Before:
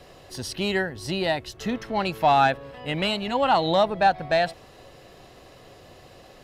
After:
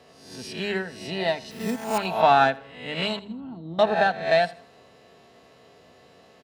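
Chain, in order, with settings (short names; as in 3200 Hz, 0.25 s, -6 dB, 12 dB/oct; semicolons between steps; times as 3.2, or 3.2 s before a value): spectral swells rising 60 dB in 0.71 s; HPF 80 Hz 24 dB/oct; high shelf 9100 Hz -10 dB; notches 50/100/150/200 Hz; comb 4.5 ms, depth 44%; 1.51–1.98 sample-rate reducer 7800 Hz, jitter 0%; 3.19–3.79 EQ curve 340 Hz 0 dB, 500 Hz -23 dB, 1200 Hz -30 dB; feedback echo 81 ms, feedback 39%, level -17 dB; upward expander 1.5:1, over -28 dBFS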